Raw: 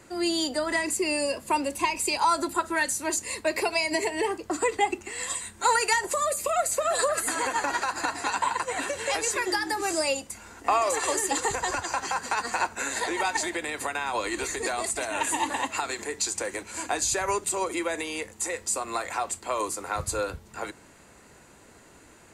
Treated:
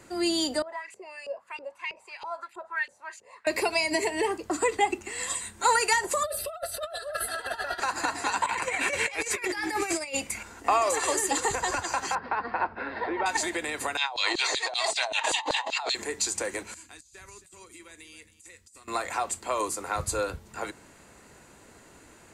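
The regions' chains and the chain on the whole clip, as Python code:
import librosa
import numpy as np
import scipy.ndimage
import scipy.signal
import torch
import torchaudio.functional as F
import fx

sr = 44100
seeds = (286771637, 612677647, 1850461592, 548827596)

y = fx.chain(x, sr, fx.filter_lfo_bandpass(shape='saw_up', hz=3.1, low_hz=400.0, high_hz=2900.0, q=4.0),
    fx.peak_eq(hz=290.0, db=-13.5, octaves=0.68), at=(0.62, 3.47))
y = fx.chain(y, sr, fx.comb(ms=3.0, depth=0.7),
    fx.over_compress(threshold_db=-29.0, ratio=-0.5),
    fx.fixed_phaser(hz=1500.0, stages=8), at=(6.23, 7.8))
y = fx.chain(y, sr, fx.peak_eq(hz=2300.0, db=14.0, octaves=0.37),
    fx.over_compress(threshold_db=-29.0, ratio=-0.5), at=(8.46, 10.43))
y = fx.chain(y, sr, fx.lowpass(hz=1600.0, slope=12),
    fx.resample_bad(factor=4, down='none', up='filtered'), at=(12.15, 13.26))
y = fx.chain(y, sr, fx.curve_eq(hz=(210.0, 820.0, 1400.0, 2500.0, 4100.0, 12000.0), db=(0, 11, -2, 1, 8, -19)),
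    fx.filter_lfo_highpass(shape='saw_down', hz=5.2, low_hz=380.0, high_hz=5000.0, q=1.7),
    fx.over_compress(threshold_db=-30.0, ratio=-1.0), at=(13.97, 15.95))
y = fx.chain(y, sr, fx.tone_stack(knobs='6-0-2'),
    fx.echo_single(ms=269, db=-14.5),
    fx.over_compress(threshold_db=-48.0, ratio=-0.5), at=(16.74, 18.88))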